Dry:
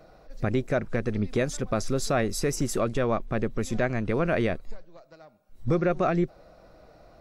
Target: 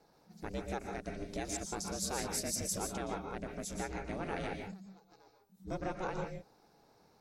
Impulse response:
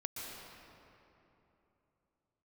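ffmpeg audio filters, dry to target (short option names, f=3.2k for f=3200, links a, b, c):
-filter_complex "[0:a]bass=f=250:g=-5,treble=f=4k:g=12,aeval=exprs='val(0)*sin(2*PI*190*n/s)':c=same[a];[1:a]atrim=start_sample=2205,afade=t=out:st=0.23:d=0.01,atrim=end_sample=10584[b];[a][b]afir=irnorm=-1:irlink=0,volume=-7dB"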